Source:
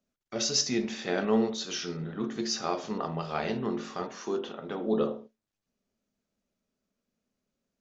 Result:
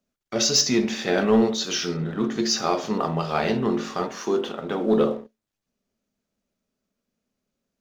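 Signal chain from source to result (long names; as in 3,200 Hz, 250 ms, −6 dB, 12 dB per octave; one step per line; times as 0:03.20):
leveller curve on the samples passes 1
level +4.5 dB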